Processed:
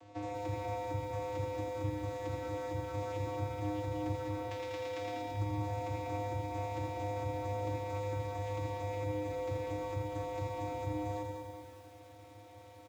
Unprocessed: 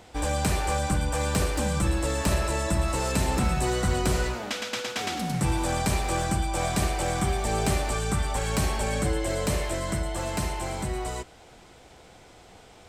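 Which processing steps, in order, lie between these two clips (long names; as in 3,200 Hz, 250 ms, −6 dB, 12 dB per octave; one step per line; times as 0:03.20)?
stylus tracing distortion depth 0.14 ms
low-shelf EQ 150 Hz −6 dB
downward compressor 6 to 1, threshold −33 dBFS, peak gain reduction 10.5 dB
channel vocoder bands 16, square 102 Hz
notch filter 1,500 Hz, Q 26
repeating echo 84 ms, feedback 39%, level −6 dB
feedback echo at a low word length 194 ms, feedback 55%, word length 10 bits, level −5 dB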